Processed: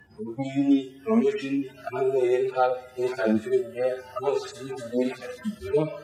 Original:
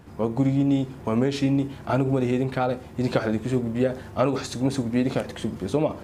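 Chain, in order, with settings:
harmonic-percussive split with one part muted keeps harmonic
hum removal 82 Hz, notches 3
noise reduction from a noise print of the clip's start 26 dB
on a send at −20.5 dB: convolution reverb RT60 0.95 s, pre-delay 40 ms
on the sum: multiband upward and downward compressor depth 40%
level +6 dB

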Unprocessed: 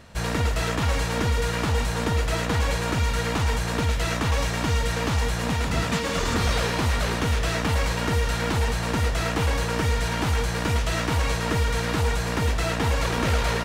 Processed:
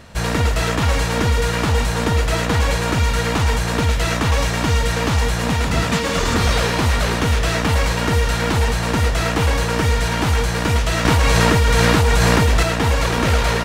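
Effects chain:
0:11.05–0:12.63: envelope flattener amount 100%
level +6 dB

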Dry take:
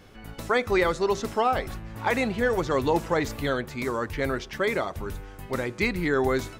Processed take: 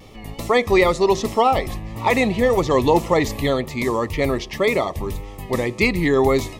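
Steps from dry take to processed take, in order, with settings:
Butterworth band-reject 1,500 Hz, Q 2.8
tape wow and flutter 56 cents
level +7.5 dB

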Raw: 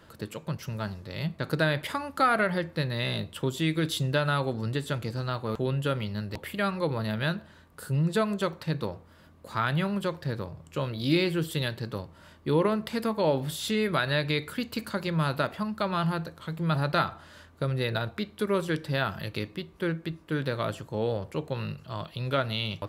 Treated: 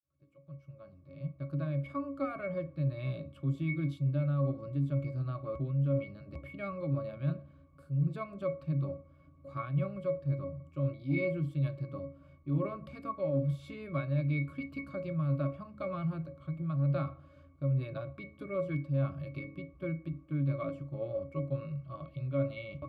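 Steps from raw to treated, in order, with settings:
fade in at the beginning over 2.98 s
high-shelf EQ 6,200 Hz +9.5 dB
resonances in every octave C#, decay 0.24 s
hum removal 105.3 Hz, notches 7
sine wavefolder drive 5 dB, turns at −10 dBFS
reversed playback
downward compressor 6 to 1, threshold −27 dBFS, peak gain reduction 10 dB
reversed playback

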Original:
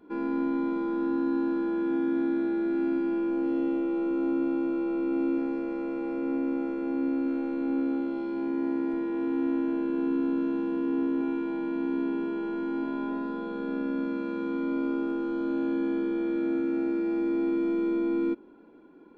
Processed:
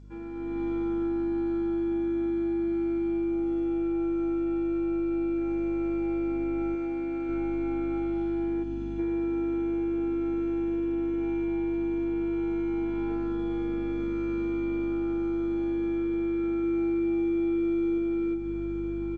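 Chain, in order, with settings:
stiff-string resonator 110 Hz, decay 0.29 s, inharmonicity 0.002
repeating echo 913 ms, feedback 17%, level −11.5 dB
0:08.63–0:08.99: gain on a spectral selection 300–2,400 Hz −11 dB
notch filter 2,600 Hz, Q 13
rectangular room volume 2,000 cubic metres, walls furnished, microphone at 0.44 metres
mains hum 50 Hz, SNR 14 dB
downward compressor 8 to 1, threshold −34 dBFS, peak gain reduction 8 dB
parametric band 2,100 Hz +9 dB 1.9 octaves
automatic gain control gain up to 10 dB
0:06.75–0:07.29: low-shelf EQ 180 Hz −9 dB
0:16.60–0:17.98: double-tracking delay 27 ms −12.5 dB
level −2.5 dB
G.722 64 kbit/s 16,000 Hz

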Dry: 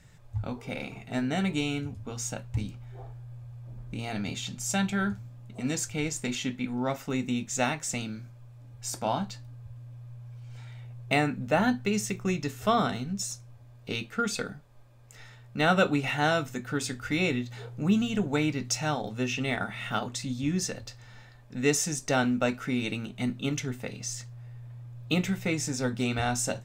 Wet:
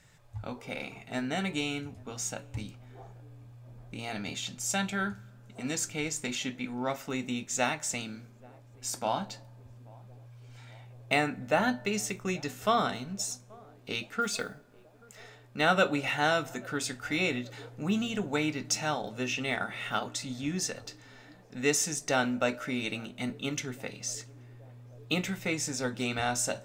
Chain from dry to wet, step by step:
low-shelf EQ 260 Hz −9 dB
on a send at −22.5 dB: convolution reverb RT60 1.3 s, pre-delay 3 ms
0:14.21–0:15.22: on the sum: noise that follows the level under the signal 27 dB
feedback echo with a band-pass in the loop 832 ms, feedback 80%, band-pass 420 Hz, level −23.5 dB

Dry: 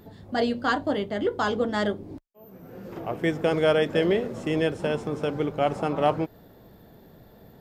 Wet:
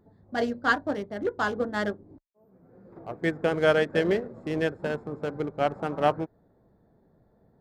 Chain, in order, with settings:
adaptive Wiener filter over 15 samples
dynamic equaliser 1,600 Hz, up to +6 dB, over −44 dBFS, Q 2.7
expander for the loud parts 1.5 to 1, over −40 dBFS

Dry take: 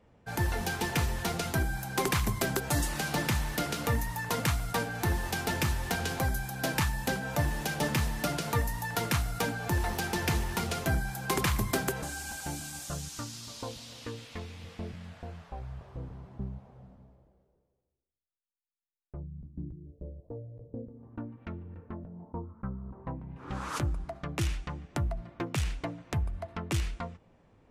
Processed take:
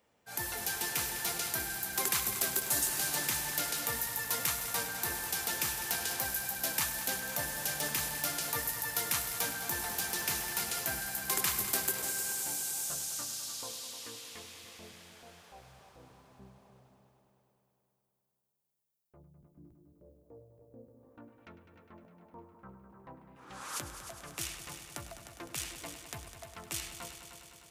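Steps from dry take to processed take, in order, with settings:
RIAA equalisation recording
transient designer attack −4 dB, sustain 0 dB
echo machine with several playback heads 102 ms, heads all three, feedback 65%, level −13.5 dB
level −6 dB

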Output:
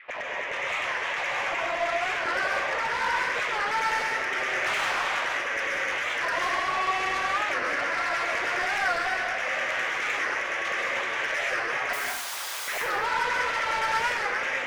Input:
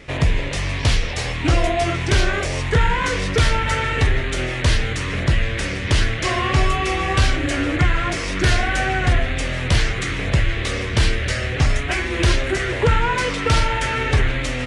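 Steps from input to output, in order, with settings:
0:04.65–0:05.20: compressing power law on the bin magnitudes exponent 0.18
low-pass filter 2,800 Hz 24 dB per octave
brickwall limiter −15 dBFS, peak gain reduction 7.5 dB
automatic gain control gain up to 4 dB
0:11.93–0:12.68: wrap-around overflow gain 27 dB
auto-filter high-pass saw down 9.7 Hz 560–2,000 Hz
soft clipping −20.5 dBFS, distortion −10 dB
dense smooth reverb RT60 0.91 s, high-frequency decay 0.75×, pre-delay 115 ms, DRR −2 dB
wow of a warped record 45 rpm, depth 160 cents
level −6.5 dB

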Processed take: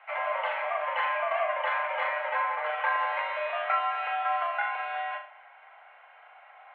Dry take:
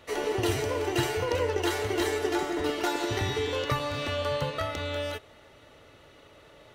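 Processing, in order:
flutter between parallel walls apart 6.7 metres, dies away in 0.39 s
single-sideband voice off tune +170 Hz 560–2,300 Hz
level +3.5 dB

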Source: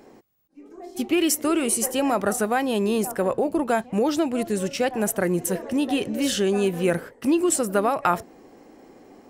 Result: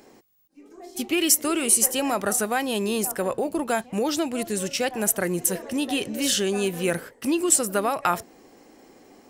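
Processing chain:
high-shelf EQ 2,200 Hz +9.5 dB
level −3.5 dB

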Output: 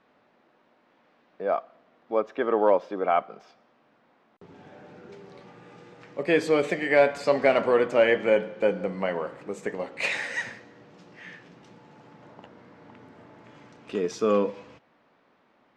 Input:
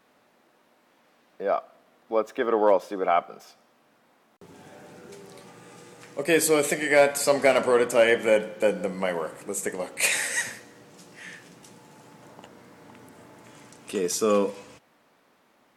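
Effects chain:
high-frequency loss of the air 200 metres

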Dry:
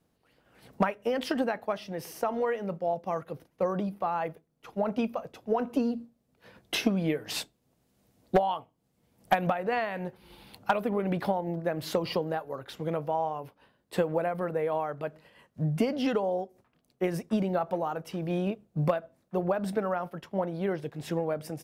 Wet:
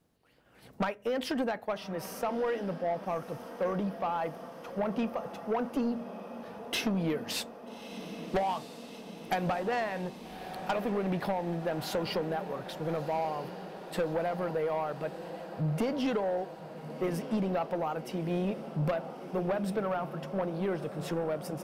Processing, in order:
feedback delay with all-pass diffusion 1,268 ms, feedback 69%, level −14 dB
soft clipping −24 dBFS, distortion −12 dB

